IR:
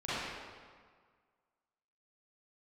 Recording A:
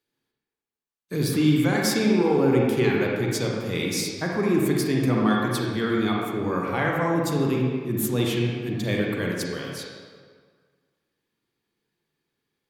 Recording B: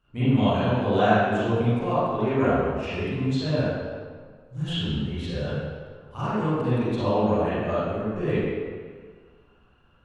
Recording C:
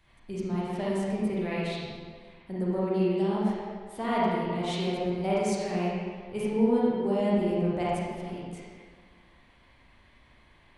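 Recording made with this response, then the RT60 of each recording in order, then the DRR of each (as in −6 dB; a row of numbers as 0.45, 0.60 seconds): B; 1.7, 1.7, 1.7 seconds; −2.5, −13.5, −7.5 decibels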